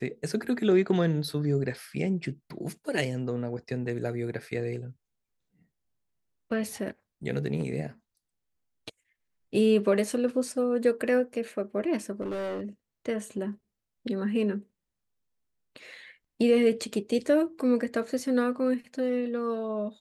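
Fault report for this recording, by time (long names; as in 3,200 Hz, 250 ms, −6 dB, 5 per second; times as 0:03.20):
0:12.21–0:12.65: clipping −29.5 dBFS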